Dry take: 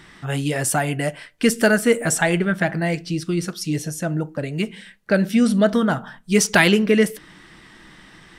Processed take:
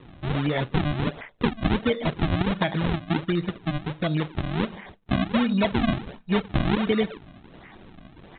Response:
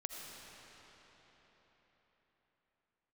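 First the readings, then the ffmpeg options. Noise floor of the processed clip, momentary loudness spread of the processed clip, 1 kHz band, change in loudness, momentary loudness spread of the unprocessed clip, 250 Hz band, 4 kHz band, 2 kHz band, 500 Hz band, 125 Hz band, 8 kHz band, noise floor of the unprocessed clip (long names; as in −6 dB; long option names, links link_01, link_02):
−50 dBFS, 7 LU, −3.5 dB, −6.0 dB, 11 LU, −5.0 dB, −5.0 dB, −10.0 dB, −8.0 dB, −1.5 dB, below −40 dB, −48 dBFS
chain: -af "acompressor=threshold=-20dB:ratio=4,aresample=8000,acrusher=samples=10:mix=1:aa=0.000001:lfo=1:lforange=16:lforate=1.4,aresample=44100"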